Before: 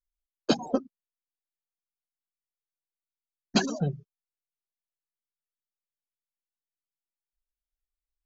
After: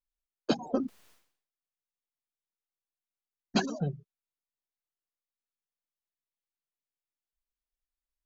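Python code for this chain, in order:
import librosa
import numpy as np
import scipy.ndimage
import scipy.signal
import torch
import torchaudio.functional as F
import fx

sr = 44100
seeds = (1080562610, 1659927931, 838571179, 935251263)

y = fx.high_shelf(x, sr, hz=5400.0, db=-7.5)
y = fx.sustainer(y, sr, db_per_s=100.0, at=(0.7, 3.59), fade=0.02)
y = F.gain(torch.from_numpy(y), -3.5).numpy()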